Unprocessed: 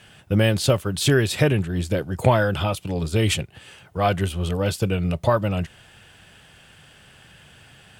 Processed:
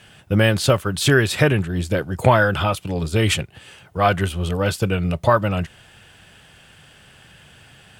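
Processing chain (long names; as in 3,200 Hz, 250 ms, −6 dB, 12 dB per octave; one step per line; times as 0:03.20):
dynamic equaliser 1,400 Hz, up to +6 dB, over −37 dBFS, Q 1.1
level +1.5 dB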